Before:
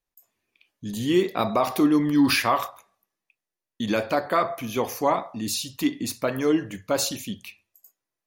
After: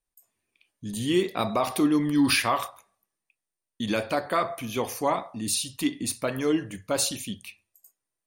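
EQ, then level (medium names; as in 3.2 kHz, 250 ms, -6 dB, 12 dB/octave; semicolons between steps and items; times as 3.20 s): peaking EQ 9 kHz +15 dB 0.21 oct; dynamic bell 3.2 kHz, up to +4 dB, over -42 dBFS, Q 1.1; bass shelf 120 Hz +5 dB; -3.5 dB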